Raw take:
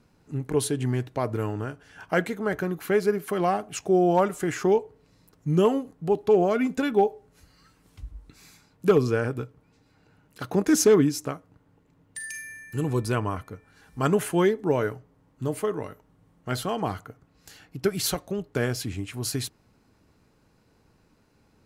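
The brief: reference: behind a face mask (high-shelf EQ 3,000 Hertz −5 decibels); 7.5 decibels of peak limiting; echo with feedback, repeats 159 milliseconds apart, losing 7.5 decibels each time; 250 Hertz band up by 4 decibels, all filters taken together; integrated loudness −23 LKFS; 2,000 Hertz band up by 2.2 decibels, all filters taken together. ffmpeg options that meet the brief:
ffmpeg -i in.wav -af "equalizer=frequency=250:width_type=o:gain=5.5,equalizer=frequency=2000:width_type=o:gain=4.5,alimiter=limit=-14.5dB:level=0:latency=1,highshelf=frequency=3000:gain=-5,aecho=1:1:159|318|477|636|795:0.422|0.177|0.0744|0.0312|0.0131,volume=3dB" out.wav

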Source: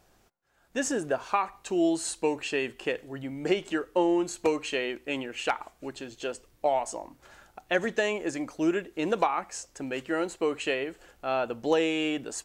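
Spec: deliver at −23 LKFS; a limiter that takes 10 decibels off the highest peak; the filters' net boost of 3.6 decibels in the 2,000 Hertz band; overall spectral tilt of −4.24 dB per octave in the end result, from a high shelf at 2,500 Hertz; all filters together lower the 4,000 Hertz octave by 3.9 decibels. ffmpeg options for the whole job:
ffmpeg -i in.wav -af "equalizer=frequency=2000:width_type=o:gain=8.5,highshelf=frequency=2500:gain=-3.5,equalizer=frequency=4000:width_type=o:gain=-8.5,volume=9dB,alimiter=limit=-10.5dB:level=0:latency=1" out.wav

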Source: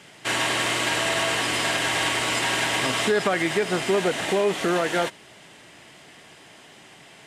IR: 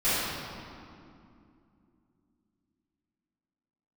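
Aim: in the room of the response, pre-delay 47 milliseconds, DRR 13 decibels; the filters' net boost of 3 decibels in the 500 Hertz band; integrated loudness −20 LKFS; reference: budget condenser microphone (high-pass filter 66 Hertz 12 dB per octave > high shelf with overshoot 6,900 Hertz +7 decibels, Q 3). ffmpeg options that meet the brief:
-filter_complex "[0:a]equalizer=frequency=500:width_type=o:gain=4,asplit=2[link_01][link_02];[1:a]atrim=start_sample=2205,adelay=47[link_03];[link_02][link_03]afir=irnorm=-1:irlink=0,volume=-27.5dB[link_04];[link_01][link_04]amix=inputs=2:normalize=0,highpass=66,highshelf=frequency=6900:width_type=q:width=3:gain=7,volume=0.5dB"

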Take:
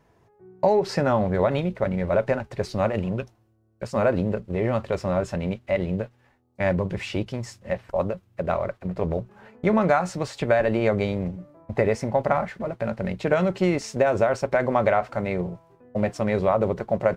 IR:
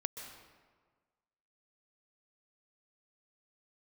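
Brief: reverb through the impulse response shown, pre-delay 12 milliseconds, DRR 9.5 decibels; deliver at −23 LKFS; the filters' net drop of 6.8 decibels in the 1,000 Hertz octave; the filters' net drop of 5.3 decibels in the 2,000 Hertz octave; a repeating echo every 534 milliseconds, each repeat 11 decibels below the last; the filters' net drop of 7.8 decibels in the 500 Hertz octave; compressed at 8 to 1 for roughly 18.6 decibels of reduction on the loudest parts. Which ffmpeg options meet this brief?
-filter_complex "[0:a]equalizer=frequency=500:width_type=o:gain=-8,equalizer=frequency=1000:width_type=o:gain=-5,equalizer=frequency=2000:width_type=o:gain=-4.5,acompressor=threshold=-41dB:ratio=8,aecho=1:1:534|1068|1602:0.282|0.0789|0.0221,asplit=2[link_01][link_02];[1:a]atrim=start_sample=2205,adelay=12[link_03];[link_02][link_03]afir=irnorm=-1:irlink=0,volume=-9.5dB[link_04];[link_01][link_04]amix=inputs=2:normalize=0,volume=22dB"

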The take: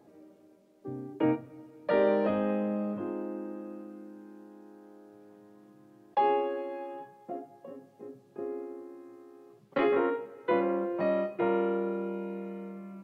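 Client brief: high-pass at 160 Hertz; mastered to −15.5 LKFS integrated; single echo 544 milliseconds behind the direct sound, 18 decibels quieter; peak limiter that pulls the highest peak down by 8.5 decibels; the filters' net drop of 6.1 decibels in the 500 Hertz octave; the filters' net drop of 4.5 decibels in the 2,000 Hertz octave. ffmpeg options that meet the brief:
ffmpeg -i in.wav -af "highpass=160,equalizer=frequency=500:width_type=o:gain=-7.5,equalizer=frequency=2000:width_type=o:gain=-5,alimiter=level_in=2.5dB:limit=-24dB:level=0:latency=1,volume=-2.5dB,aecho=1:1:544:0.126,volume=23dB" out.wav

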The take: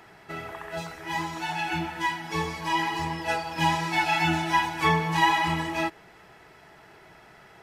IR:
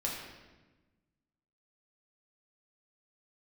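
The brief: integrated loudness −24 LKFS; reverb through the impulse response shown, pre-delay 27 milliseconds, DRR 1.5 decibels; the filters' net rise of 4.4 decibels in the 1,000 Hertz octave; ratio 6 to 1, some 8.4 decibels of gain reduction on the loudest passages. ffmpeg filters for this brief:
-filter_complex "[0:a]equalizer=frequency=1000:width_type=o:gain=5,acompressor=threshold=-22dB:ratio=6,asplit=2[link_01][link_02];[1:a]atrim=start_sample=2205,adelay=27[link_03];[link_02][link_03]afir=irnorm=-1:irlink=0,volume=-5.5dB[link_04];[link_01][link_04]amix=inputs=2:normalize=0,volume=1.5dB"

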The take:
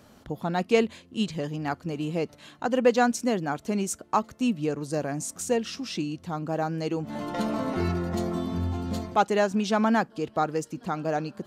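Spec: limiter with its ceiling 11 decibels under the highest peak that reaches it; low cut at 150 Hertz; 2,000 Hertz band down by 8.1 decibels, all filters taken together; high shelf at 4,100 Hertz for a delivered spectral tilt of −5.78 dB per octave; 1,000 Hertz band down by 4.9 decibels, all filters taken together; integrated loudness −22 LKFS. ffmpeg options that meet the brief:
ffmpeg -i in.wav -af "highpass=150,equalizer=frequency=1000:width_type=o:gain=-5,equalizer=frequency=2000:width_type=o:gain=-8.5,highshelf=frequency=4100:gain=-4,volume=10.5dB,alimiter=limit=-10.5dB:level=0:latency=1" out.wav

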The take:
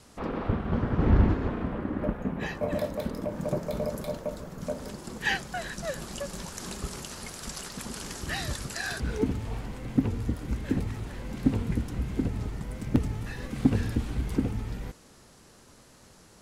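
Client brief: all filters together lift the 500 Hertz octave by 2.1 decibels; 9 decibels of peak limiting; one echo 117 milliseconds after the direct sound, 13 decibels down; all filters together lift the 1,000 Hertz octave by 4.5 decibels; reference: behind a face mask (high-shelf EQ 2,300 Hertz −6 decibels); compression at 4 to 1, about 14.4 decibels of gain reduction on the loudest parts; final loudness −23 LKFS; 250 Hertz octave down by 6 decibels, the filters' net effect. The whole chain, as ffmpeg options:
ffmpeg -i in.wav -af "equalizer=frequency=250:width_type=o:gain=-8.5,equalizer=frequency=500:width_type=o:gain=3,equalizer=frequency=1000:width_type=o:gain=6.5,acompressor=threshold=-34dB:ratio=4,alimiter=level_in=5.5dB:limit=-24dB:level=0:latency=1,volume=-5.5dB,highshelf=frequency=2300:gain=-6,aecho=1:1:117:0.224,volume=18dB" out.wav

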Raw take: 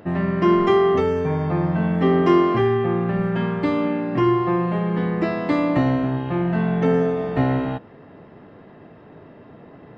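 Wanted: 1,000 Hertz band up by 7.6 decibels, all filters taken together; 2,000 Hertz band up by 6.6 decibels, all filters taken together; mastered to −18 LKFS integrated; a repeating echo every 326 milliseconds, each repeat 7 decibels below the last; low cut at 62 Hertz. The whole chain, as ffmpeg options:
ffmpeg -i in.wav -af "highpass=62,equalizer=frequency=1000:width_type=o:gain=7.5,equalizer=frequency=2000:width_type=o:gain=5.5,aecho=1:1:326|652|978|1304|1630:0.447|0.201|0.0905|0.0407|0.0183,volume=-1dB" out.wav

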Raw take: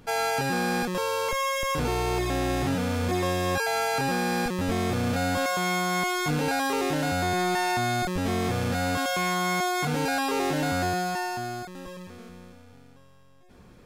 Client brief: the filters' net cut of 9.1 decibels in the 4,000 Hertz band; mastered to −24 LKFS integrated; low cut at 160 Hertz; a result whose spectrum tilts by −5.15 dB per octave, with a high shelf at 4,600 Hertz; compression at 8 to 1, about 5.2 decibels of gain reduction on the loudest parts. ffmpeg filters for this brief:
ffmpeg -i in.wav -af "highpass=160,equalizer=frequency=4000:width_type=o:gain=-9,highshelf=frequency=4600:gain=-5,acompressor=threshold=-29dB:ratio=8,volume=9dB" out.wav

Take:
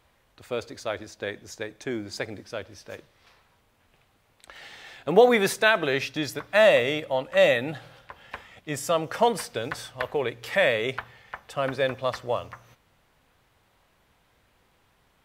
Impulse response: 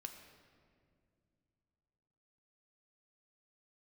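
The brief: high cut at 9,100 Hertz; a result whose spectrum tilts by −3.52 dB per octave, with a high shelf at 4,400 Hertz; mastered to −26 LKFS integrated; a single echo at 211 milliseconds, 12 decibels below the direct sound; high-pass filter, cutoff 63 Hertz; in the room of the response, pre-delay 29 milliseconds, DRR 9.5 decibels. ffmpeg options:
-filter_complex "[0:a]highpass=63,lowpass=9100,highshelf=frequency=4400:gain=5,aecho=1:1:211:0.251,asplit=2[link_01][link_02];[1:a]atrim=start_sample=2205,adelay=29[link_03];[link_02][link_03]afir=irnorm=-1:irlink=0,volume=-5dB[link_04];[link_01][link_04]amix=inputs=2:normalize=0,volume=-2dB"

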